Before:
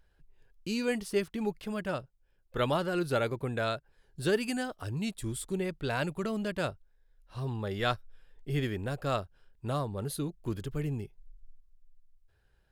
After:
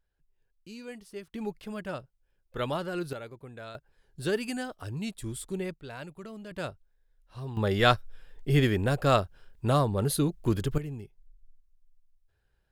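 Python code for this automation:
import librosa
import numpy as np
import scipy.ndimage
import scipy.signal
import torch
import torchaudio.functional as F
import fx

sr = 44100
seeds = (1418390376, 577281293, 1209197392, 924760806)

y = fx.gain(x, sr, db=fx.steps((0.0, -12.0), (1.33, -2.5), (3.13, -12.0), (3.75, -1.0), (5.74, -10.0), (6.51, -3.0), (7.57, 8.0), (10.78, -4.0)))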